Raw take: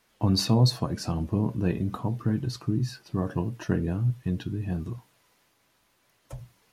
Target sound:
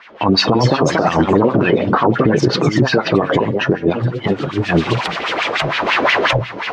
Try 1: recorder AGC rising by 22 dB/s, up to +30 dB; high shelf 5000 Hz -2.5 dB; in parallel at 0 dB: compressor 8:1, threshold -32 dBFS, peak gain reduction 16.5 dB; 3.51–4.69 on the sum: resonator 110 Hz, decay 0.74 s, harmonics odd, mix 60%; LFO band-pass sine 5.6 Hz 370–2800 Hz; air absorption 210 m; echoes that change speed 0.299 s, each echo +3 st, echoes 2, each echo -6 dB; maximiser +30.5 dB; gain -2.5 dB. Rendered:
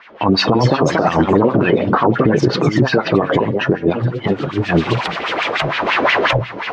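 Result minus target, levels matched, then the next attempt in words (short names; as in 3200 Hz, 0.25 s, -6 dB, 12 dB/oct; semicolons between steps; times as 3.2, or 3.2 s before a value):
8000 Hz band -3.5 dB
recorder AGC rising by 22 dB/s, up to +30 dB; high shelf 5000 Hz +5.5 dB; in parallel at 0 dB: compressor 8:1, threshold -32 dBFS, peak gain reduction 16.5 dB; 3.51–4.69 on the sum: resonator 110 Hz, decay 0.74 s, harmonics odd, mix 60%; LFO band-pass sine 5.6 Hz 370–2800 Hz; air absorption 210 m; echoes that change speed 0.299 s, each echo +3 st, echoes 2, each echo -6 dB; maximiser +30.5 dB; gain -2.5 dB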